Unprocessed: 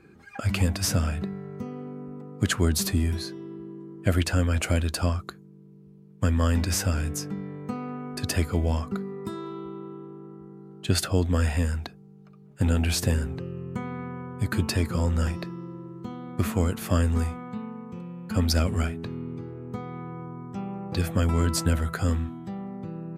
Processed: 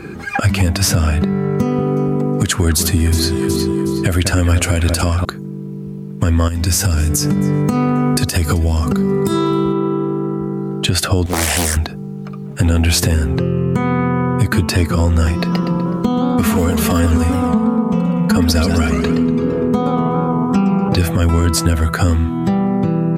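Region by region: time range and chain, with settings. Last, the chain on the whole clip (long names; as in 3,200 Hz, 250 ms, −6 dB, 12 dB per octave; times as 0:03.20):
0:01.60–0:05.25: parametric band 9,500 Hz +5.5 dB 1.7 octaves + delay that swaps between a low-pass and a high-pass 183 ms, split 2,100 Hz, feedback 54%, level −9 dB
0:06.48–0:09.73: bass and treble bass +5 dB, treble +9 dB + downward compressor 12 to 1, threshold −29 dBFS + feedback echo with a swinging delay time 267 ms, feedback 36%, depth 64 cents, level −23 dB
0:11.26–0:11.77: bass and treble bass −11 dB, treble +14 dB + highs frequency-modulated by the lows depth 0.94 ms
0:15.39–0:20.89: comb filter 4.3 ms, depth 80% + feedback echo with a swinging delay time 124 ms, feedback 35%, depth 202 cents, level −9 dB
whole clip: downward compressor 4 to 1, threshold −36 dBFS; boost into a limiter +27 dB; level −3.5 dB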